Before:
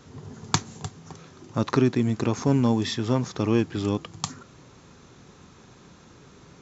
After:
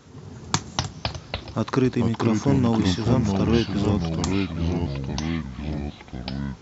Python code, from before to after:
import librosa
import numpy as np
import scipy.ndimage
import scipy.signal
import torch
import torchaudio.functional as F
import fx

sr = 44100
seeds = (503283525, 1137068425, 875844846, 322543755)

y = fx.echo_pitch(x, sr, ms=142, semitones=-3, count=3, db_per_echo=-3.0)